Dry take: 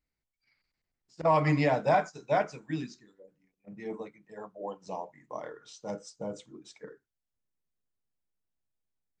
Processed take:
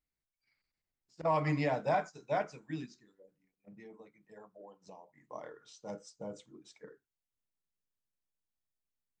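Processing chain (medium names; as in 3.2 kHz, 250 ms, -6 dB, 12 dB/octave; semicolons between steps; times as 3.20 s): 2.85–5.17 s: compression 6:1, threshold -44 dBFS, peak gain reduction 11.5 dB; trim -6 dB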